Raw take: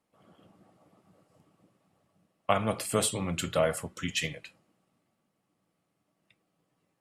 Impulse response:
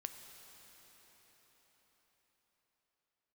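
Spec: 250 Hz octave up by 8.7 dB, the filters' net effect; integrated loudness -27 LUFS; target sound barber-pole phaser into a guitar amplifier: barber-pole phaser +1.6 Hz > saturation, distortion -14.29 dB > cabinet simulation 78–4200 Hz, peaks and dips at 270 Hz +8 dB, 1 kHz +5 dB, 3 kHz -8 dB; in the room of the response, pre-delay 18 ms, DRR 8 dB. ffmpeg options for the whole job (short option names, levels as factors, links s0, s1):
-filter_complex "[0:a]equalizer=f=250:t=o:g=7,asplit=2[s0][s1];[1:a]atrim=start_sample=2205,adelay=18[s2];[s1][s2]afir=irnorm=-1:irlink=0,volume=0.562[s3];[s0][s3]amix=inputs=2:normalize=0,asplit=2[s4][s5];[s5]afreqshift=1.6[s6];[s4][s6]amix=inputs=2:normalize=1,asoftclip=threshold=0.075,highpass=78,equalizer=f=270:t=q:w=4:g=8,equalizer=f=1000:t=q:w=4:g=5,equalizer=f=3000:t=q:w=4:g=-8,lowpass=f=4200:w=0.5412,lowpass=f=4200:w=1.3066,volume=2"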